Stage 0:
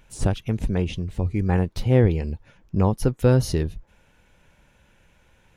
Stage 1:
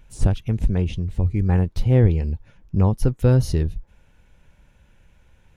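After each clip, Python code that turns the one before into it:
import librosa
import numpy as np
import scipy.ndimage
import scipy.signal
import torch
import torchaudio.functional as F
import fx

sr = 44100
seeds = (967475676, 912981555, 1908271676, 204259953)

y = fx.low_shelf(x, sr, hz=140.0, db=10.5)
y = F.gain(torch.from_numpy(y), -3.0).numpy()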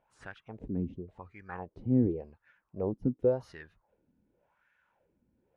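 y = fx.wah_lfo(x, sr, hz=0.9, low_hz=240.0, high_hz=1700.0, q=3.8)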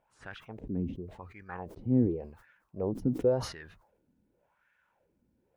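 y = fx.sustainer(x, sr, db_per_s=96.0)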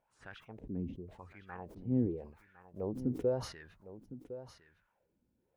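y = x + 10.0 ** (-13.5 / 20.0) * np.pad(x, (int(1058 * sr / 1000.0), 0))[:len(x)]
y = F.gain(torch.from_numpy(y), -5.5).numpy()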